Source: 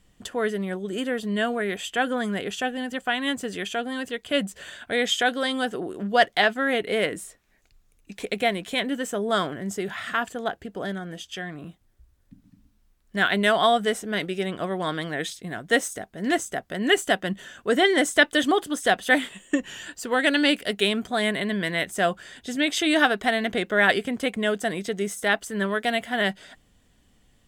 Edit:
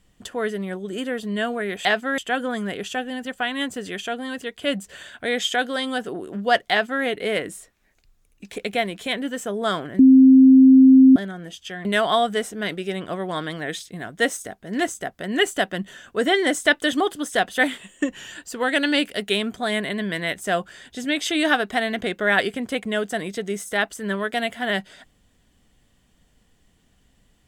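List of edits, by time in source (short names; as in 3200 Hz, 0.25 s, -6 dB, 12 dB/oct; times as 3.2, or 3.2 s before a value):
6.38–6.71 copy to 1.85
9.66–10.83 bleep 263 Hz -7 dBFS
11.52–13.36 cut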